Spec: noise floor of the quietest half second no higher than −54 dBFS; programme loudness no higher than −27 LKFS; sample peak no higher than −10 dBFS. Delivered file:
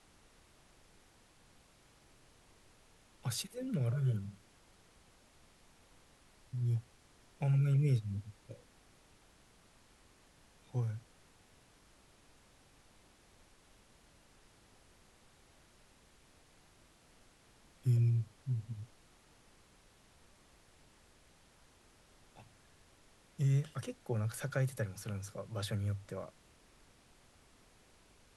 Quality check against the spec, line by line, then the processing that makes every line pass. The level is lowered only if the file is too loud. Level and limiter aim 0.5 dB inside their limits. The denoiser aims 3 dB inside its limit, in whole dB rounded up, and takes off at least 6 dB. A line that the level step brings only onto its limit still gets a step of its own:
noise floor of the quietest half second −65 dBFS: in spec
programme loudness −36.5 LKFS: in spec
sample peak −21.0 dBFS: in spec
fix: no processing needed

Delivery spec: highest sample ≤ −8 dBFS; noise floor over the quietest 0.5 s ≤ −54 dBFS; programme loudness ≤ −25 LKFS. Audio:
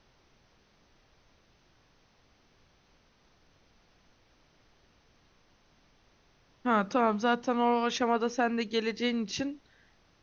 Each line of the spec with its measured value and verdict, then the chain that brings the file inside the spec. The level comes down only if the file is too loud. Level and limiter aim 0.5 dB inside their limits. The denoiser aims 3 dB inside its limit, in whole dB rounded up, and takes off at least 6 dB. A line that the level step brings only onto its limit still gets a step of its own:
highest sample −15.0 dBFS: in spec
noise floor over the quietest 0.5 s −65 dBFS: in spec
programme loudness −29.0 LKFS: in spec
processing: no processing needed

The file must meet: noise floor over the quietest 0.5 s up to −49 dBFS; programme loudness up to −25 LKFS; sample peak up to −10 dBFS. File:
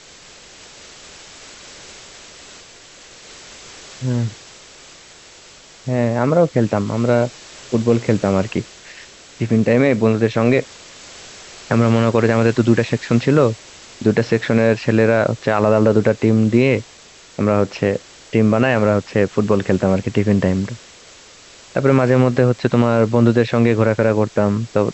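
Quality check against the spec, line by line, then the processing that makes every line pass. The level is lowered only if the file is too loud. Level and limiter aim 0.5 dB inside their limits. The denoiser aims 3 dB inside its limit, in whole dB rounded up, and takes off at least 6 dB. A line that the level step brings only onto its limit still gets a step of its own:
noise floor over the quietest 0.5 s −44 dBFS: out of spec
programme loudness −17.0 LKFS: out of spec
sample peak −2.5 dBFS: out of spec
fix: level −8.5 dB

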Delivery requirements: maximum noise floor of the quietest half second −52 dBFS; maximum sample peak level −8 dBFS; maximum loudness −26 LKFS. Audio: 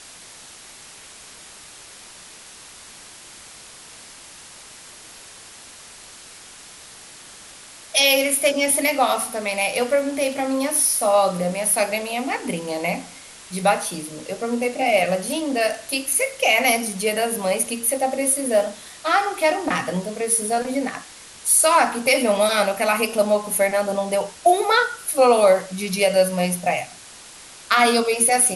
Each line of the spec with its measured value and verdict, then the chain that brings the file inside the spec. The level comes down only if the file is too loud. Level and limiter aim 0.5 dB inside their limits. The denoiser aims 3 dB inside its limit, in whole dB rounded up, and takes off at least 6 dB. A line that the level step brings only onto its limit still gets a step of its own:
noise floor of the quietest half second −43 dBFS: out of spec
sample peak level −5.5 dBFS: out of spec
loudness −20.0 LKFS: out of spec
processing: broadband denoise 6 dB, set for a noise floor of −43 dBFS
level −6.5 dB

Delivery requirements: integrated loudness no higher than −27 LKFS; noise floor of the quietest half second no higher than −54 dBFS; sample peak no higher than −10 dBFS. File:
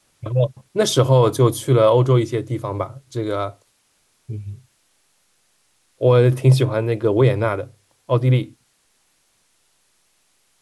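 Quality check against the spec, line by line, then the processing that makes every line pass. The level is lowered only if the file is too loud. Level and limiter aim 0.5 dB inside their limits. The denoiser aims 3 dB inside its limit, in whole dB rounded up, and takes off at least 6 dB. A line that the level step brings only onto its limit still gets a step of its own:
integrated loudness −18.5 LKFS: out of spec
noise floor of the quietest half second −64 dBFS: in spec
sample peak −4.5 dBFS: out of spec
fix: level −9 dB

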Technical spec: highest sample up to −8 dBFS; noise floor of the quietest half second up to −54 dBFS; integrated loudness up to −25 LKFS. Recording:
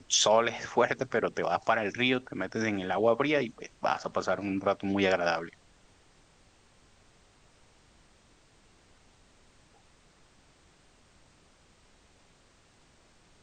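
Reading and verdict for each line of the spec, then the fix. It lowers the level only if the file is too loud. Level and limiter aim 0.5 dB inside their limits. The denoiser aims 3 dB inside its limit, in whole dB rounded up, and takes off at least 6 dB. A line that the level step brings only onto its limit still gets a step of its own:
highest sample −11.5 dBFS: in spec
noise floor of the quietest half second −62 dBFS: in spec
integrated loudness −28.5 LKFS: in spec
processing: no processing needed

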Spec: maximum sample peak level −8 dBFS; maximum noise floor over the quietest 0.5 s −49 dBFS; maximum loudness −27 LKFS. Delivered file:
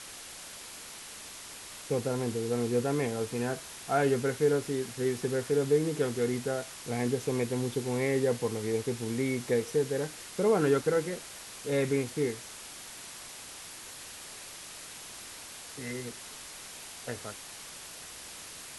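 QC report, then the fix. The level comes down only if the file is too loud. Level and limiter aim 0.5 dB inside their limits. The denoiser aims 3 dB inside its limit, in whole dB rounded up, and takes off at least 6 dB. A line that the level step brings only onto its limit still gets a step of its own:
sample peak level −14.0 dBFS: in spec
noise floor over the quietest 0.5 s −45 dBFS: out of spec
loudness −31.0 LKFS: in spec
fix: broadband denoise 7 dB, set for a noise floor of −45 dBFS

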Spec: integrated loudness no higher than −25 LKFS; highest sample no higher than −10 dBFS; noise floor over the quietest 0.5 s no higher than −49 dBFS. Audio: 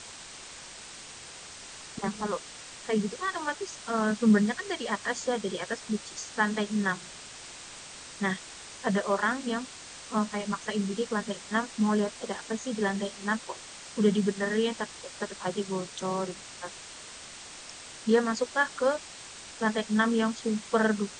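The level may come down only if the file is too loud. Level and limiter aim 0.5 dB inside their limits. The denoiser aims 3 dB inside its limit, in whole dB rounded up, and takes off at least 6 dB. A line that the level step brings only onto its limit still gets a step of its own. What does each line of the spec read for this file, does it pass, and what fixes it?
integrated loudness −30.0 LKFS: in spec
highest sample −11.0 dBFS: in spec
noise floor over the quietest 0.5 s −45 dBFS: out of spec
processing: broadband denoise 7 dB, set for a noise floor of −45 dBFS

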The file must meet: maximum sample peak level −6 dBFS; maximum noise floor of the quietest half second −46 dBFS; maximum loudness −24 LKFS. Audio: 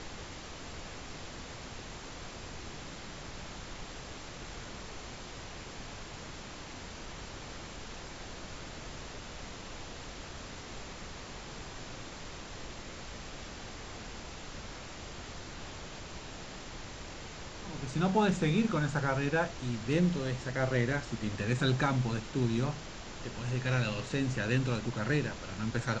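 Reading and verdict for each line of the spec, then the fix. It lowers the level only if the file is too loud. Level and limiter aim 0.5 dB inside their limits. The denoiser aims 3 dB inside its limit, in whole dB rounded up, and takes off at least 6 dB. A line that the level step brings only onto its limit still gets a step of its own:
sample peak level −15.5 dBFS: in spec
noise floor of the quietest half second −45 dBFS: out of spec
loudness −36.5 LKFS: in spec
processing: broadband denoise 6 dB, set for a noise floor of −45 dBFS

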